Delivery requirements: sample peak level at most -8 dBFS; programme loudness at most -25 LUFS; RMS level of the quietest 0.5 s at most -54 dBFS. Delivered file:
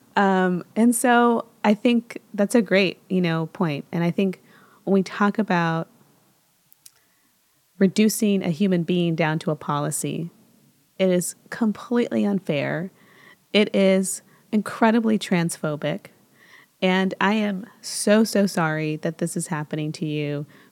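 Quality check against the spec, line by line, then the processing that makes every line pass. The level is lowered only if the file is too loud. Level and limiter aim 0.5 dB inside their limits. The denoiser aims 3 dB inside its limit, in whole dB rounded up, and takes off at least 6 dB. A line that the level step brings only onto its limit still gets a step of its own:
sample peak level -4.0 dBFS: fail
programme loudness -22.5 LUFS: fail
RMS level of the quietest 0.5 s -64 dBFS: pass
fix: trim -3 dB; peak limiter -8.5 dBFS

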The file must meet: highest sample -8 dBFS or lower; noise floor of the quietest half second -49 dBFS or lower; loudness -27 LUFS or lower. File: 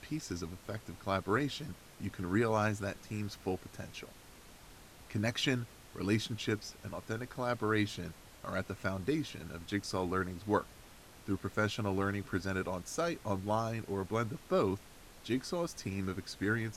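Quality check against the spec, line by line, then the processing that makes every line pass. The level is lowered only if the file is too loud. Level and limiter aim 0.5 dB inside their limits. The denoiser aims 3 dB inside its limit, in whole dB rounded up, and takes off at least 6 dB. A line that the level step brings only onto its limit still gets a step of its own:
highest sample -16.5 dBFS: pass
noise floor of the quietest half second -55 dBFS: pass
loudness -36.0 LUFS: pass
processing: none needed

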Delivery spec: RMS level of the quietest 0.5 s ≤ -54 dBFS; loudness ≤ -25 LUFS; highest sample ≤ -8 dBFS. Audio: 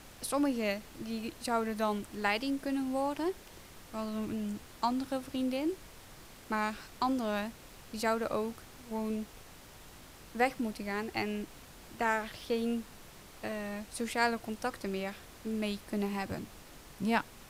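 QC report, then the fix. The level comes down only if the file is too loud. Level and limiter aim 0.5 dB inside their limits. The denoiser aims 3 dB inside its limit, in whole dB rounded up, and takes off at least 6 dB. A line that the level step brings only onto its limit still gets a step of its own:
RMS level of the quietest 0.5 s -52 dBFS: fail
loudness -35.0 LUFS: pass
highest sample -14.0 dBFS: pass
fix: noise reduction 6 dB, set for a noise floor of -52 dBFS

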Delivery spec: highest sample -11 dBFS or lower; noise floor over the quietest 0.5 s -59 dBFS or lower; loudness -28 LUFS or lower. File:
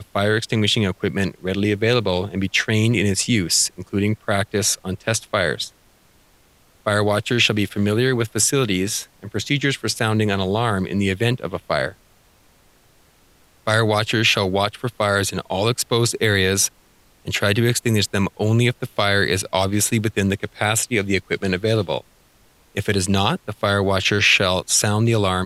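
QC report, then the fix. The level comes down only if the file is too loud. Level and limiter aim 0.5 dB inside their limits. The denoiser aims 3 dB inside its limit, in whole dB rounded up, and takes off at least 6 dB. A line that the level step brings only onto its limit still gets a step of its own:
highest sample -3.5 dBFS: fail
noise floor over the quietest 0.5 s -55 dBFS: fail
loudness -20.0 LUFS: fail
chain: trim -8.5 dB

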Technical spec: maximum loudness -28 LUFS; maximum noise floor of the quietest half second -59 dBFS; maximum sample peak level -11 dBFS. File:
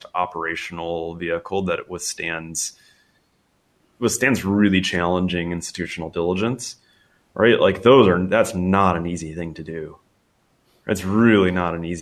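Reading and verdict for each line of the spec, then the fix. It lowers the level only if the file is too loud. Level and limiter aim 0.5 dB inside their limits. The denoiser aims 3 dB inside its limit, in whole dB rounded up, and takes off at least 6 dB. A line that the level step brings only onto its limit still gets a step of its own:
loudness -20.5 LUFS: fail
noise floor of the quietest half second -64 dBFS: pass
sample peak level -3.0 dBFS: fail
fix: trim -8 dB; peak limiter -11.5 dBFS

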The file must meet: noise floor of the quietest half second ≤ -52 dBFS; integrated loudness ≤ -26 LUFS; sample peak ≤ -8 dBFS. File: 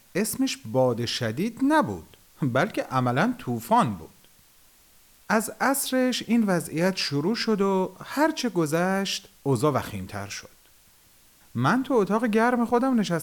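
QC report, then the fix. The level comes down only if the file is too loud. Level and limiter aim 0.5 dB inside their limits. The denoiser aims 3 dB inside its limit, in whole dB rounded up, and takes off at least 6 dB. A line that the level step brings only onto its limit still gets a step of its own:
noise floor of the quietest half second -57 dBFS: pass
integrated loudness -25.0 LUFS: fail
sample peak -9.5 dBFS: pass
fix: trim -1.5 dB

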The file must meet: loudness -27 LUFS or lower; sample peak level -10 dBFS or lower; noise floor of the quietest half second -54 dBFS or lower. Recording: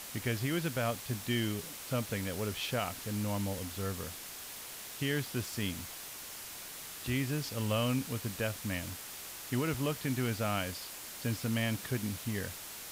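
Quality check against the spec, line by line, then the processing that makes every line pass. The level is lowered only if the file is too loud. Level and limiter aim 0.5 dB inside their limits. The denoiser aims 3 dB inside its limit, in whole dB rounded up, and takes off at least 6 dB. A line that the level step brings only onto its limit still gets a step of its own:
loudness -35.5 LUFS: pass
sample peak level -21.0 dBFS: pass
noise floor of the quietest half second -45 dBFS: fail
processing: noise reduction 12 dB, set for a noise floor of -45 dBFS

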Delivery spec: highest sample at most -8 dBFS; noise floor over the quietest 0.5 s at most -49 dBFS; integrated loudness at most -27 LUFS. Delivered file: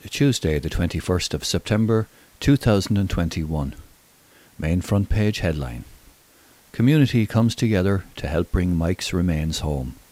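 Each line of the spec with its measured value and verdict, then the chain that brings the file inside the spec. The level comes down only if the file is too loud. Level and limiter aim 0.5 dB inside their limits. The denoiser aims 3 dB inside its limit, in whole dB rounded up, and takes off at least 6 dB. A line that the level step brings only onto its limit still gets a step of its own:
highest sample -5.5 dBFS: fail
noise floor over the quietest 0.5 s -54 dBFS: pass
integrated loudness -22.0 LUFS: fail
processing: trim -5.5 dB

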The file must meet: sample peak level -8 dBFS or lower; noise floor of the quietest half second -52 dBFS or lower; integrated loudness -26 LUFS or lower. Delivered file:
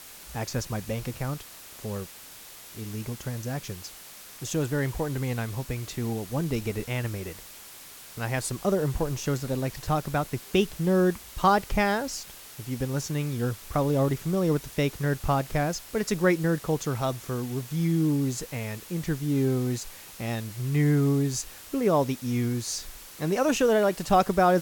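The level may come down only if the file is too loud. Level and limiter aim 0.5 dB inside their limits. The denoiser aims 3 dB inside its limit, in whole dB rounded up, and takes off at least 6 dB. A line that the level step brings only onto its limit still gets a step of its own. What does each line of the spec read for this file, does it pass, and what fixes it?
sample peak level -9.5 dBFS: pass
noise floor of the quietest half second -46 dBFS: fail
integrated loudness -27.5 LUFS: pass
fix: noise reduction 9 dB, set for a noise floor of -46 dBFS

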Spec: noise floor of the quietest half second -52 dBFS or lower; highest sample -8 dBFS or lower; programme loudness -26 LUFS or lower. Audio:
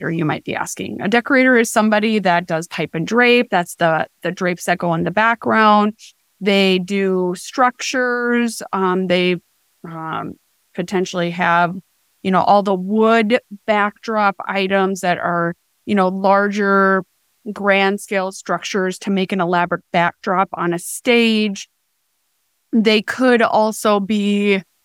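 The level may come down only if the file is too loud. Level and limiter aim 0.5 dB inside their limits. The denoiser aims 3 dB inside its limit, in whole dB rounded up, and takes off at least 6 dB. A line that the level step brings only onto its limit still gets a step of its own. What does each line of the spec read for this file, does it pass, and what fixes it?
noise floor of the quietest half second -67 dBFS: pass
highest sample -1.5 dBFS: fail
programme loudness -17.0 LUFS: fail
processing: trim -9.5 dB

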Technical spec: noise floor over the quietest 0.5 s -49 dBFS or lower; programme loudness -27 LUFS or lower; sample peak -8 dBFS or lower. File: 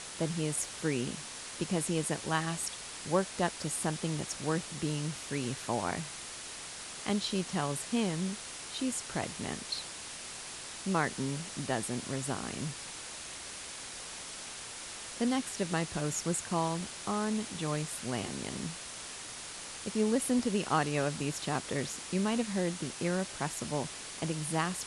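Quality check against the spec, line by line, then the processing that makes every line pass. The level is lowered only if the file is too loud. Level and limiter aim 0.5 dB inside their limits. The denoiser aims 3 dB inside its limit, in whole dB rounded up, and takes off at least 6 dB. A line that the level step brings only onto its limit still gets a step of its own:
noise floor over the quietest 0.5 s -44 dBFS: fail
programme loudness -34.5 LUFS: pass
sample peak -15.0 dBFS: pass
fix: noise reduction 8 dB, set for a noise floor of -44 dBFS

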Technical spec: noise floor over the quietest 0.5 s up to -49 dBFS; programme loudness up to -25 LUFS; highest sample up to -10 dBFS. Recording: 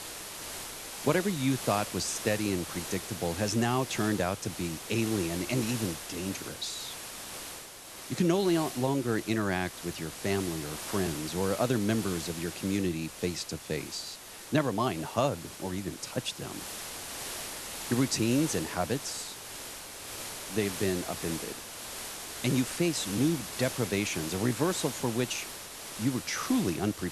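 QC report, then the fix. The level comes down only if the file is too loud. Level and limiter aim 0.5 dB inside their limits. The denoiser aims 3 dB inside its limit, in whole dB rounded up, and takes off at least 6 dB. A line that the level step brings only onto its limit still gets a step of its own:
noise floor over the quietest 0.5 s -46 dBFS: fail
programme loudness -31.5 LUFS: pass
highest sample -11.0 dBFS: pass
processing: noise reduction 6 dB, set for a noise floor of -46 dBFS

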